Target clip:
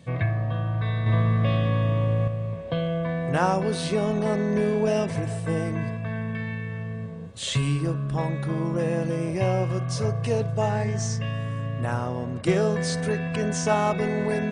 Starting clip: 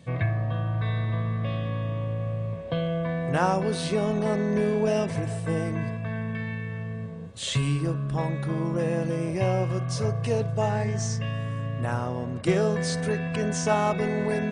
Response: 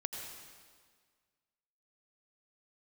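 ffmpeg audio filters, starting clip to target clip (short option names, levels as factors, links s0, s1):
-filter_complex "[0:a]asettb=1/sr,asplit=3[s0][s1][s2];[s0]atrim=end=1.064[s3];[s1]atrim=start=1.06:end=2.28,asetpts=PTS-STARTPTS,afade=t=in:d=0.004:c=qsin,afade=t=out:st=1.216:d=0.004:c=qsin,acontrast=37[s4];[s2]atrim=start=2.276[s5];[s3][s4]acrossfade=d=0.004:c1=hsin:c2=qsin[s6];[s6][s5]acrossfade=d=0.004:c1=qsin:c2=hsin,volume=1.12"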